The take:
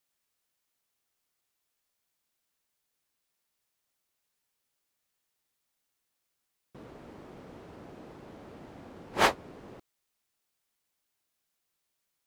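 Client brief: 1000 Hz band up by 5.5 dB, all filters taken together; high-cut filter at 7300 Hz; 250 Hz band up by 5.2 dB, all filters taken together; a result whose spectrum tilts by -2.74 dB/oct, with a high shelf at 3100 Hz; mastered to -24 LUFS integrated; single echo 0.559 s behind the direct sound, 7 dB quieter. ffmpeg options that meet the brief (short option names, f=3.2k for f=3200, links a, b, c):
-af "lowpass=7.3k,equalizer=f=250:t=o:g=6.5,equalizer=f=1k:t=o:g=5.5,highshelf=f=3.1k:g=8.5,aecho=1:1:559:0.447,volume=2dB"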